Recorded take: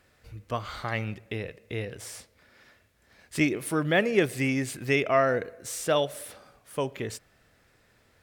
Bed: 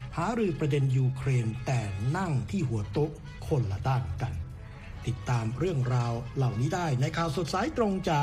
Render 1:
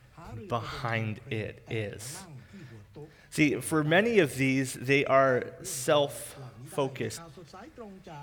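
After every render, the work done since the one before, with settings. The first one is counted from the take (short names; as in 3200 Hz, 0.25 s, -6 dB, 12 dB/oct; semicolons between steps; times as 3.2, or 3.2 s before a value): add bed -18.5 dB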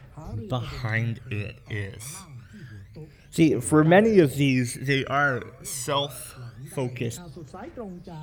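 phaser 0.26 Hz, delay 1 ms, feedback 67%; wow and flutter 120 cents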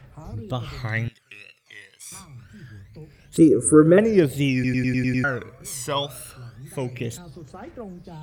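1.08–2.12 band-pass 7000 Hz, Q 0.52; 3.37–3.98 EQ curve 160 Hz 0 dB, 500 Hz +9 dB, 740 Hz -27 dB, 1300 Hz +5 dB, 1900 Hz -11 dB, 3400 Hz -15 dB, 5700 Hz -7 dB, 9700 Hz +13 dB, 15000 Hz -25 dB; 4.54 stutter in place 0.10 s, 7 plays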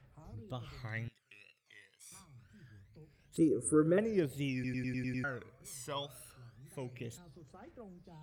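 gain -15 dB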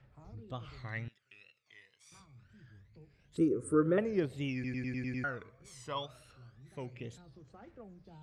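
LPF 5700 Hz 12 dB/oct; dynamic EQ 1100 Hz, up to +4 dB, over -54 dBFS, Q 1.4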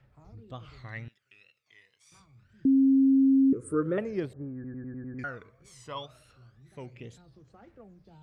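2.65–3.53 bleep 269 Hz -17.5 dBFS; 4.33–5.19 rippled Chebyshev low-pass 1700 Hz, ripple 3 dB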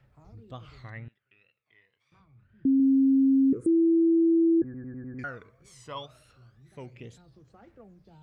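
0.9–2.8 air absorption 400 m; 3.66–4.62 bleep 331 Hz -18 dBFS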